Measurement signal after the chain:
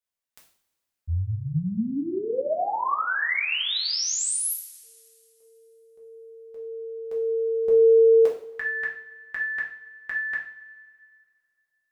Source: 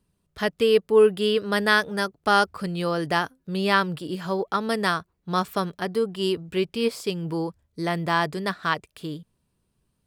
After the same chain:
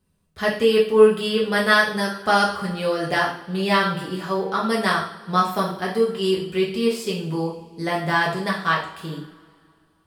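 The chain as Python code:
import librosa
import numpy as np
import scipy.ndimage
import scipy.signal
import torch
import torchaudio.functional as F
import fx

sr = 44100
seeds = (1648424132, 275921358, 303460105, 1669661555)

y = fx.rev_double_slope(x, sr, seeds[0], early_s=0.48, late_s=2.3, knee_db=-21, drr_db=-4.5)
y = y * librosa.db_to_amplitude(-2.0)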